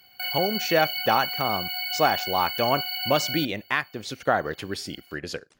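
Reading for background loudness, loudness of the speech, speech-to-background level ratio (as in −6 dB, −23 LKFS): −28.0 LKFS, −26.5 LKFS, 1.5 dB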